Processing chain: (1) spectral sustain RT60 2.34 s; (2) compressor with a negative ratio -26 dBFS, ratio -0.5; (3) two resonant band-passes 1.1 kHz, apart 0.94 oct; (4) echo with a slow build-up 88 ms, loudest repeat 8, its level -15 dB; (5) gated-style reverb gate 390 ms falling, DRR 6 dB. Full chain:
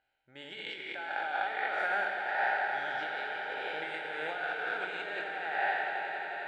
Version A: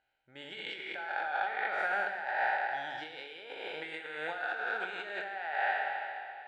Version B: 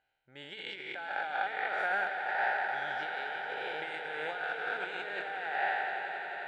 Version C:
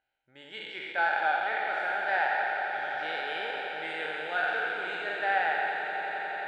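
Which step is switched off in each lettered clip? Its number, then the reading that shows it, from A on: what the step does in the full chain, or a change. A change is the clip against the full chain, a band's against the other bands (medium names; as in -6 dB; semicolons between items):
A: 4, echo-to-direct -0.5 dB to -6.0 dB; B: 5, echo-to-direct -0.5 dB to -3.5 dB; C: 2, crest factor change +1.5 dB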